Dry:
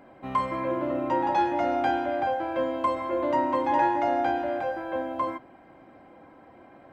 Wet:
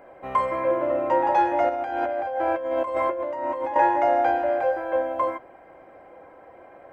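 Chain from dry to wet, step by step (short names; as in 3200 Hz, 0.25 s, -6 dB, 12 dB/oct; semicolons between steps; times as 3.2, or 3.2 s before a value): graphic EQ 125/250/500/2000/4000 Hz -5/-10/+8/+3/-8 dB; 1.69–3.76 negative-ratio compressor -29 dBFS, ratio -1; gain +2 dB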